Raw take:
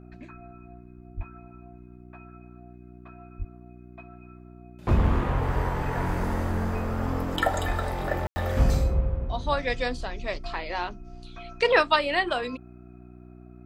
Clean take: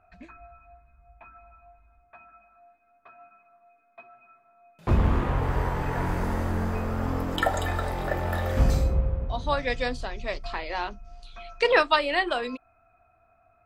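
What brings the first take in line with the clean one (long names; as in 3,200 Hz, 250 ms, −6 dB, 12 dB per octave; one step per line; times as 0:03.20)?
hum removal 60.9 Hz, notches 6
0:01.16–0:01.28: high-pass filter 140 Hz 24 dB per octave
0:03.38–0:03.50: high-pass filter 140 Hz 24 dB per octave
0:07.67–0:07.79: high-pass filter 140 Hz 24 dB per octave
ambience match 0:08.27–0:08.36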